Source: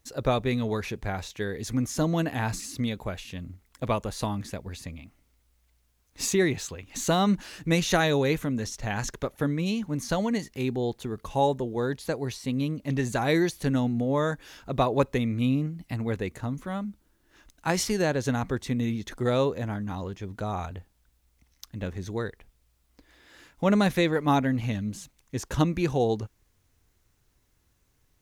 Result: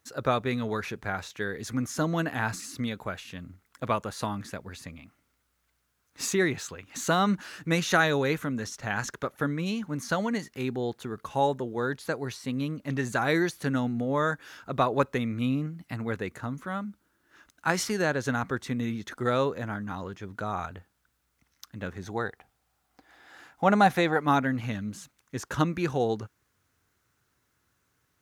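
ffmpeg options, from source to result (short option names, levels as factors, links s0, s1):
-filter_complex "[0:a]asettb=1/sr,asplit=3[s0][s1][s2];[s0]atrim=end=22.024[s3];[s1]atrim=start=22.02:end=24.21,asetpts=PTS-STARTPTS,afade=t=in:d=0.004:c=qsin,afade=t=out:st=2.186:d=0.004:c=qsin,equalizer=f=770:t=o:w=0.32:g=14.5[s4];[s2]atrim=start=24.206[s5];[s3][s4]acrossfade=d=0.004:c1=hsin:c2=qsin[s6];[s6][s5]acrossfade=d=0.004:c1=qsin:c2=hsin,highpass=100,equalizer=f=1400:w=1.9:g=9,volume=0.75"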